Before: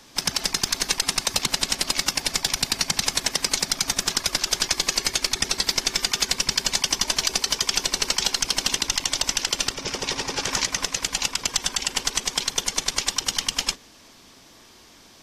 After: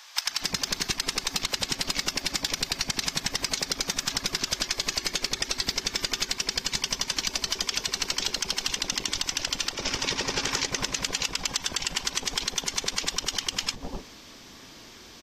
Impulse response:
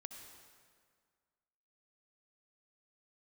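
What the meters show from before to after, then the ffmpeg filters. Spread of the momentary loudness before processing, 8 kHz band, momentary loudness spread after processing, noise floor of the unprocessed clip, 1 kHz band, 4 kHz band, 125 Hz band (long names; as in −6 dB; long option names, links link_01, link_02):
3 LU, −6.0 dB, 2 LU, −51 dBFS, −4.5 dB, −4.0 dB, −2.0 dB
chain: -filter_complex "[0:a]equalizer=frequency=10000:width_type=o:width=0.58:gain=-10,acrossover=split=790[link_01][link_02];[link_01]adelay=260[link_03];[link_03][link_02]amix=inputs=2:normalize=0,acompressor=threshold=-28dB:ratio=6,volume=4dB"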